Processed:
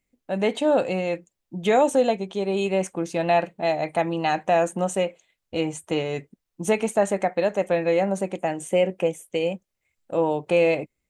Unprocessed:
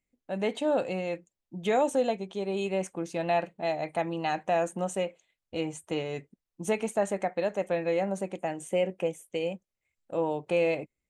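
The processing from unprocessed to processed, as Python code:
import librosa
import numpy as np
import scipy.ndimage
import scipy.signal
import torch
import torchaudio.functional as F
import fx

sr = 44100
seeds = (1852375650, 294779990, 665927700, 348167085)

y = x * librosa.db_to_amplitude(6.5)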